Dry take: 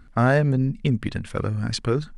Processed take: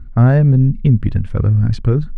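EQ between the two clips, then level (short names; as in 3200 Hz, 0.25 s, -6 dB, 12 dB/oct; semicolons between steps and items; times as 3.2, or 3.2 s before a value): RIAA curve playback; bell 88 Hz +3 dB 1.3 oct; -1.5 dB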